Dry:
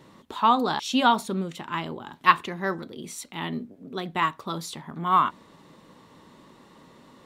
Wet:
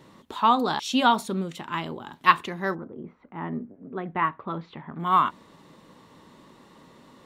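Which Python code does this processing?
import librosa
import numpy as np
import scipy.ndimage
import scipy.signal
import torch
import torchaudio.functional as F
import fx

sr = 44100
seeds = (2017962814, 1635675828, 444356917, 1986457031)

y = fx.lowpass(x, sr, hz=fx.line((2.74, 1300.0), (4.98, 2800.0)), slope=24, at=(2.74, 4.98), fade=0.02)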